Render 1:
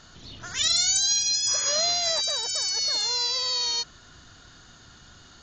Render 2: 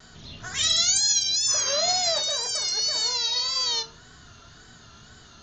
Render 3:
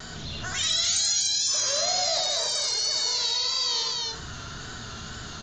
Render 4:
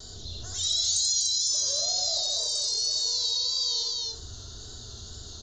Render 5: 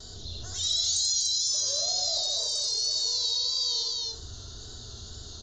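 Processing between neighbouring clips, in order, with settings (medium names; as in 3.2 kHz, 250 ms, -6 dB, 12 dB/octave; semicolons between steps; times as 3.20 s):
on a send at -4.5 dB: reverberation RT60 0.40 s, pre-delay 4 ms; on the sum: wow and flutter 83 cents
on a send: loudspeakers at several distances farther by 29 m -3 dB, 84 m -10 dB, 100 m -6 dB; on the sum: level flattener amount 50%; trim -6 dB
FFT filter 100 Hz 0 dB, 150 Hz -16 dB, 400 Hz -4 dB, 2.4 kHz -25 dB, 3.8 kHz -1 dB
low-pass 7.7 kHz 12 dB/octave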